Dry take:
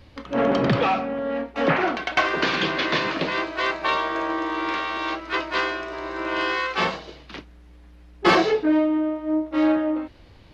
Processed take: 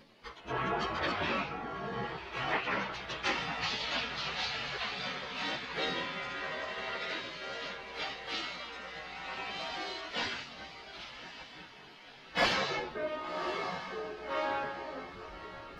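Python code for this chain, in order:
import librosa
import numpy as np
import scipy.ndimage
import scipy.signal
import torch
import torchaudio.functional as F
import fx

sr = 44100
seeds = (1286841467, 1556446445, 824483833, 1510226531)

y = fx.echo_diffused(x, sr, ms=736, feedback_pct=43, wet_db=-11)
y = fx.spec_gate(y, sr, threshold_db=-10, keep='weak')
y = fx.stretch_vocoder_free(y, sr, factor=1.5)
y = y * librosa.db_to_amplitude(-3.0)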